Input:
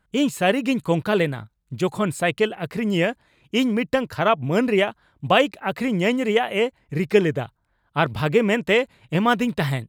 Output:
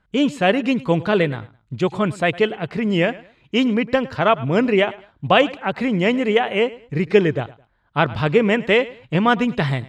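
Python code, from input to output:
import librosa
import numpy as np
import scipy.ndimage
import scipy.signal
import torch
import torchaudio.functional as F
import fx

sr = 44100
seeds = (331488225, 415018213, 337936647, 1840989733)

y = scipy.signal.sosfilt(scipy.signal.butter(2, 4900.0, 'lowpass', fs=sr, output='sos'), x)
y = fx.echo_feedback(y, sr, ms=106, feedback_pct=27, wet_db=-19.5)
y = F.gain(torch.from_numpy(y), 2.5).numpy()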